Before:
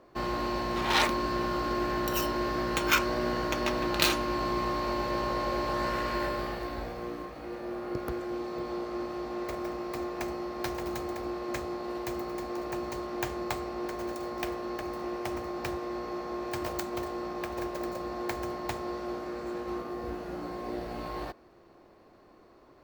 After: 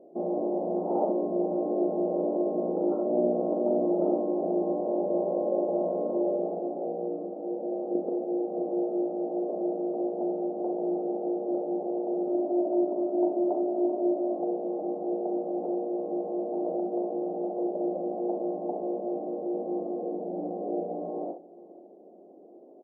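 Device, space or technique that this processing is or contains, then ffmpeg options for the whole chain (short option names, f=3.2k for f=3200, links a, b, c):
slapback doubling: -filter_complex "[0:a]asettb=1/sr,asplit=3[a][b][c];[a]atrim=end=12.274[d];[b]atrim=start=12.27:end=14.36,asetpts=PTS-STARTPTS,afade=t=in:d=0.004:c=qsin,afade=t=out:st=2.086:d=0.004:c=qsin,aecho=1:1:3.1:0.75,atrim=end_sample=92169[e];[c]atrim=start=14.356[f];[d][e]acrossfade=d=0.004:c1=hsin:c2=qsin[g];[g][f]acrossfade=d=0.004:c1=qsin:c2=hsin,aecho=1:1:486:0.0794,afftfilt=real='re*between(b*sr/4096,170,1400)':imag='im*between(b*sr/4096,170,1400)':win_size=4096:overlap=0.75,asplit=3[h][i][j];[i]adelay=40,volume=-6dB[k];[j]adelay=66,volume=-7.5dB[l];[h][k][l]amix=inputs=3:normalize=0,firequalizer=gain_entry='entry(160,0);entry(390,7);entry(720,5);entry(1100,-28)':delay=0.05:min_phase=1"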